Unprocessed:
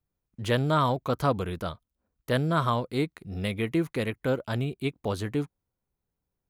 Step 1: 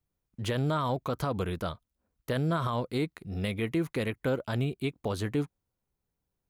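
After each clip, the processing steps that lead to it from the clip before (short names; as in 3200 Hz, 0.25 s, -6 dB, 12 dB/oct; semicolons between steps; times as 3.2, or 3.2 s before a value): limiter -20.5 dBFS, peak gain reduction 9 dB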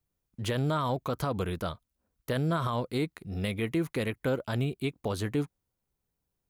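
high shelf 7600 Hz +3.5 dB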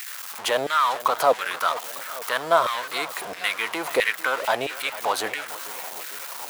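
zero-crossing step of -35 dBFS; LFO high-pass saw down 1.5 Hz 570–1900 Hz; warbling echo 0.449 s, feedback 64%, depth 96 cents, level -16.5 dB; gain +8.5 dB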